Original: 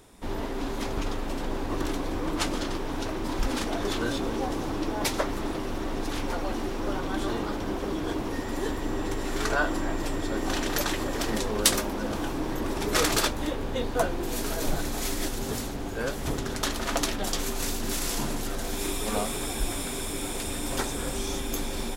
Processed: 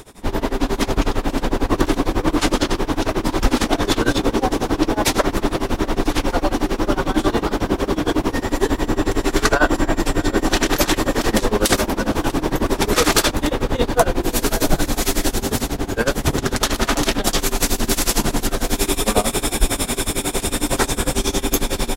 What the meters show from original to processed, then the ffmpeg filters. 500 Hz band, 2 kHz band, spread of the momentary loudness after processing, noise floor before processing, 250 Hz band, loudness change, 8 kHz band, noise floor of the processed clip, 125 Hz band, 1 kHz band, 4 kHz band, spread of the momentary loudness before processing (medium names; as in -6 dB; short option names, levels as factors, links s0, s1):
+10.5 dB, +9.5 dB, 4 LU, -33 dBFS, +10.5 dB, +10.0 dB, +9.0 dB, -34 dBFS, +10.5 dB, +10.0 dB, +9.0 dB, 6 LU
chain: -filter_complex "[0:a]tremolo=f=11:d=0.92,areverse,acompressor=mode=upward:threshold=0.01:ratio=2.5,areverse,asplit=2[s0][s1];[s1]adelay=641.4,volume=0.141,highshelf=f=4000:g=-14.4[s2];[s0][s2]amix=inputs=2:normalize=0,alimiter=level_in=5.96:limit=0.891:release=50:level=0:latency=1,volume=0.891"